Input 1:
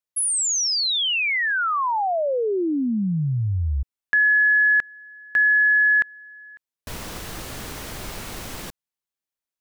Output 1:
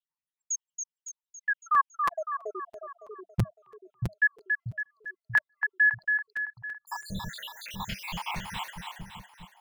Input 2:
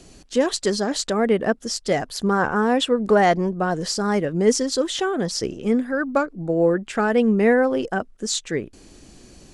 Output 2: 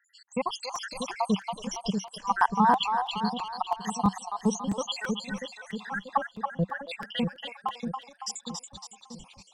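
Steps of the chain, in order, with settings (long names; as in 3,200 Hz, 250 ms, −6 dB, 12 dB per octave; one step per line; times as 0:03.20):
time-frequency cells dropped at random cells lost 85%
in parallel at +1 dB: downward compressor, threshold −37 dBFS
on the sum: noise gate −54 dBFS, range −7 dB
drawn EQ curve 100 Hz 0 dB, 190 Hz +9 dB, 300 Hz −17 dB, 640 Hz −6 dB, 920 Hz +12 dB, 1,400 Hz −3 dB, 2,900 Hz +8 dB, 7,400 Hz −6 dB
on a send: echo with a time of its own for lows and highs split 560 Hz, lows 637 ms, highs 279 ms, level −5 dB
on the sum: regular buffer underruns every 0.33 s, samples 256, repeat, from 0:00.75
level −3.5 dB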